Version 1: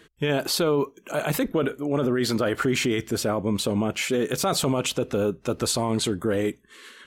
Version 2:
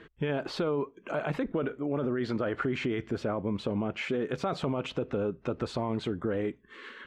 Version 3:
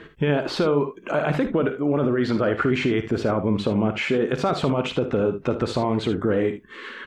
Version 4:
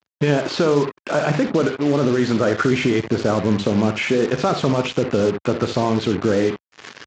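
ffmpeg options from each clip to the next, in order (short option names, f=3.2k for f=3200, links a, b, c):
-af "lowpass=2.3k,acompressor=threshold=-38dB:ratio=2,volume=3dB"
-af "aecho=1:1:55|75:0.282|0.224,volume=8.5dB"
-af "aresample=16000,acrusher=bits=4:mix=0:aa=0.5,aresample=44100,volume=3dB" -ar 32000 -c:a libspeex -b:a 36k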